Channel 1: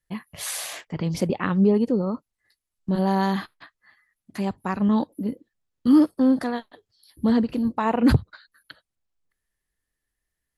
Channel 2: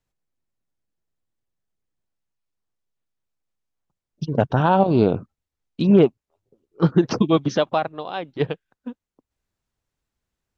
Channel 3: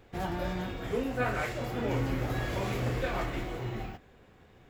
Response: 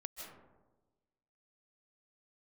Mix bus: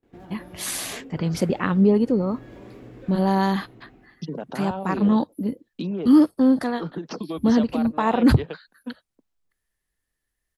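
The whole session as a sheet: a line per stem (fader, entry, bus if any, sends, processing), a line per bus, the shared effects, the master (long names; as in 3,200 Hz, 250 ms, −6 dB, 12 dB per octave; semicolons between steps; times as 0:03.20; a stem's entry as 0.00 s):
+1.5 dB, 0.20 s, no bus, no send, no echo send, no processing
−1.0 dB, 0.00 s, bus A, no send, no echo send, Butterworth high-pass 160 Hz 48 dB per octave; downward compressor 6 to 1, threshold −23 dBFS, peak gain reduction 13 dB
−10.5 dB, 0.00 s, bus A, no send, echo send −7 dB, parametric band 280 Hz +12.5 dB 1.3 octaves; downward compressor 4 to 1, threshold −31 dBFS, peak gain reduction 10.5 dB; high-shelf EQ 4,600 Hz −5 dB; automatic ducking −14 dB, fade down 1.00 s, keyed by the second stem
bus A: 0.0 dB, noise gate with hold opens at −55 dBFS; brickwall limiter −22 dBFS, peak gain reduction 8 dB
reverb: not used
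echo: repeating echo 91 ms, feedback 47%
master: no processing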